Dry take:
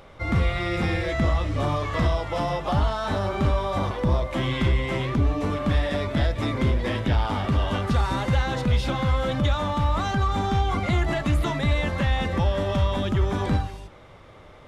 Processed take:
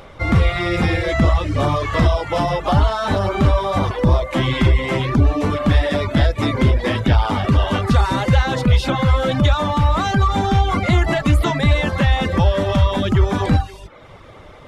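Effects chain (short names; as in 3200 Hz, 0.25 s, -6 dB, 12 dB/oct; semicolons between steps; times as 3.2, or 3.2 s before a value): reverb removal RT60 0.56 s; gain +8 dB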